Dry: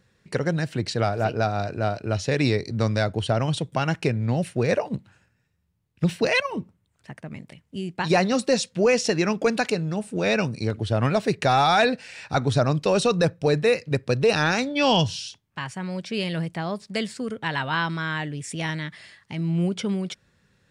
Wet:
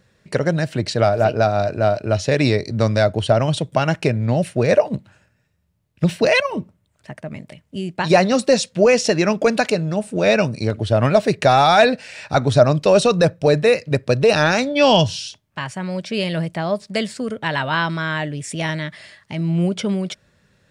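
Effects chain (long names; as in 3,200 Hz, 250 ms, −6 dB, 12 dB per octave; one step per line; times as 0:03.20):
parametric band 610 Hz +9 dB 0.21 octaves
level +4.5 dB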